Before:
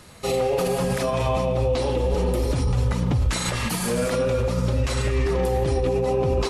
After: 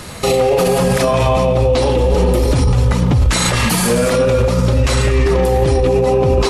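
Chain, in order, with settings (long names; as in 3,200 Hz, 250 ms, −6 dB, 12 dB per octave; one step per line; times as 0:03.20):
boost into a limiter +21 dB
level −5 dB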